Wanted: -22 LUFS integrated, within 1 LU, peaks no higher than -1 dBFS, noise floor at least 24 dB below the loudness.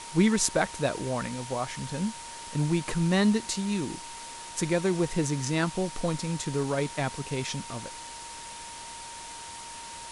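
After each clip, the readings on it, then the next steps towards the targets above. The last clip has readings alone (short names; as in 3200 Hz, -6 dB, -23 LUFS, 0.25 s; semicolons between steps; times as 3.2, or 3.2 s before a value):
steady tone 930 Hz; tone level -43 dBFS; noise floor -42 dBFS; noise floor target -54 dBFS; loudness -29.5 LUFS; peak -5.0 dBFS; loudness target -22.0 LUFS
-> notch 930 Hz, Q 30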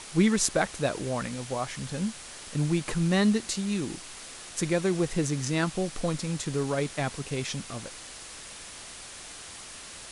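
steady tone none; noise floor -44 dBFS; noise floor target -53 dBFS
-> denoiser 9 dB, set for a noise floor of -44 dBFS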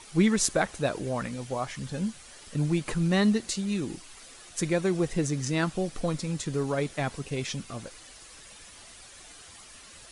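noise floor -50 dBFS; noise floor target -53 dBFS
-> denoiser 6 dB, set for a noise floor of -50 dBFS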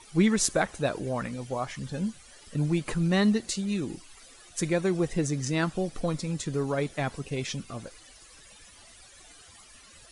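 noise floor -53 dBFS; loudness -29.0 LUFS; peak -5.0 dBFS; loudness target -22.0 LUFS
-> gain +7 dB; limiter -1 dBFS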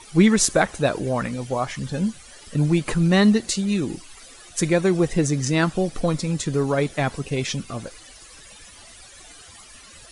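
loudness -22.0 LUFS; peak -1.0 dBFS; noise floor -46 dBFS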